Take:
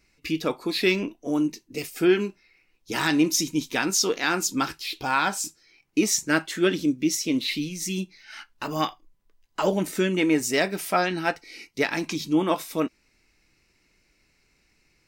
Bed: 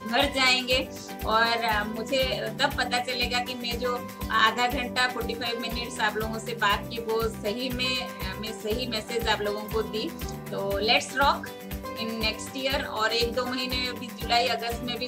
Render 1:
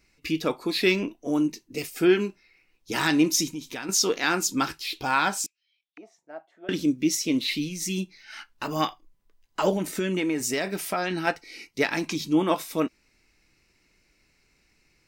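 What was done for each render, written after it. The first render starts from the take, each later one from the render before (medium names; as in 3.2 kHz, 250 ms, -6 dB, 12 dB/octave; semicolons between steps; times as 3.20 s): 3.49–3.89 s: compression 2.5:1, threshold -35 dBFS; 5.46–6.69 s: auto-wah 700–3700 Hz, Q 12, down, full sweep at -28 dBFS; 9.75–11.27 s: compression, threshold -22 dBFS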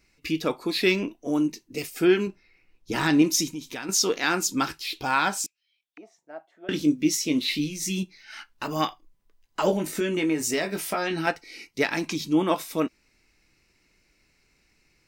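2.27–3.22 s: tilt EQ -1.5 dB/octave; 6.69–8.03 s: doubling 20 ms -7.5 dB; 9.67–11.27 s: doubling 19 ms -7 dB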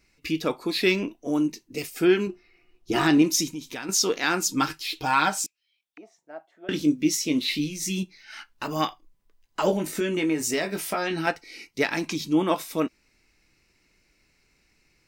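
2.29–3.18 s: small resonant body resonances 360/700/1200/2900 Hz, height 14 dB, ringing for 100 ms; 4.45–5.44 s: comb 6.5 ms, depth 52%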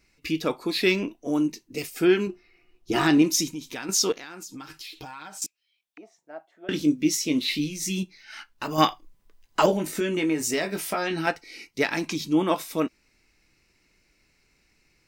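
4.12–5.42 s: compression 16:1, threshold -36 dBFS; 8.78–9.66 s: gain +6 dB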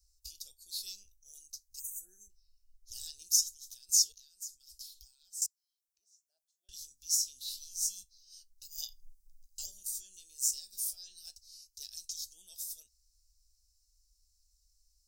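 inverse Chebyshev band-stop 140–2300 Hz, stop band 50 dB; 1.79–2.30 s: spectral selection erased 1.9–5.9 kHz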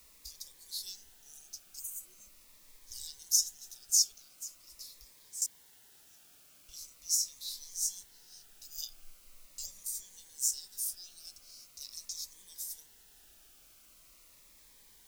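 word length cut 10-bit, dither triangular; Shepard-style phaser falling 0.42 Hz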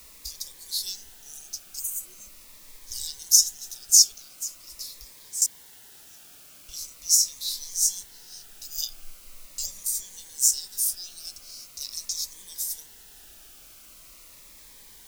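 trim +10.5 dB; peak limiter -1 dBFS, peak gain reduction 1 dB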